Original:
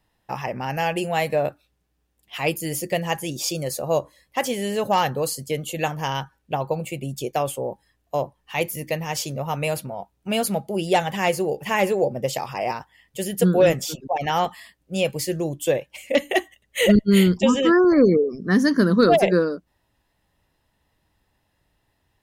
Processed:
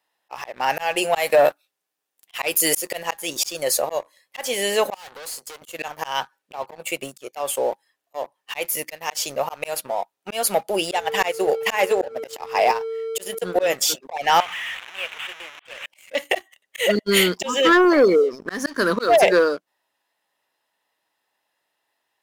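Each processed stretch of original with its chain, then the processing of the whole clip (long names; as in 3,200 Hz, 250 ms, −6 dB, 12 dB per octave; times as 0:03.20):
0:01.15–0:03.03: high-shelf EQ 6,300 Hz +6 dB + leveller curve on the samples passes 1
0:04.94–0:05.62: tube saturation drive 34 dB, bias 0.3 + high-pass filter 220 Hz + downward compressor 3 to 1, threshold −39 dBFS
0:10.93–0:13.68: transient designer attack +3 dB, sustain −11 dB + steady tone 450 Hz −29 dBFS
0:14.40–0:15.86: linear delta modulator 16 kbit/s, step −20.5 dBFS + first difference
whole clip: high-pass filter 580 Hz 12 dB per octave; volume swells 234 ms; leveller curve on the samples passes 2; level +2.5 dB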